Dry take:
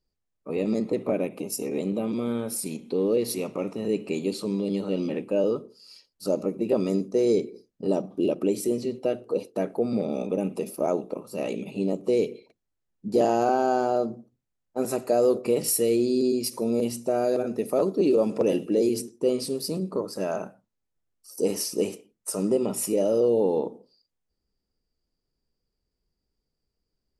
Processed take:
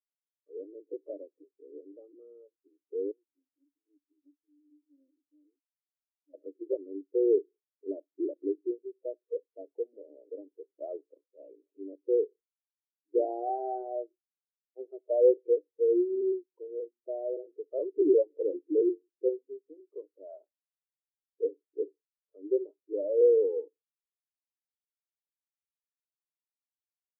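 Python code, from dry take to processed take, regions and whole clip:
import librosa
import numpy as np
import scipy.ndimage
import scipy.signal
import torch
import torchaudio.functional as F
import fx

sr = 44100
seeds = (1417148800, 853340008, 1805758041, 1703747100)

y = fx.chain(x, sr, fx.vowel_filter(vowel='i'),
    fx.low_shelf(hz=160.0, db=-4.5),
    fx.doppler_dist(depth_ms=0.4), at=(3.11, 6.34))
y = scipy.signal.sosfilt(scipy.signal.cheby1(5, 1.0, [290.0, 3800.0], 'bandpass', fs=sr, output='sos'), y)
y = fx.high_shelf(y, sr, hz=2000.0, db=-10.0)
y = fx.spectral_expand(y, sr, expansion=2.5)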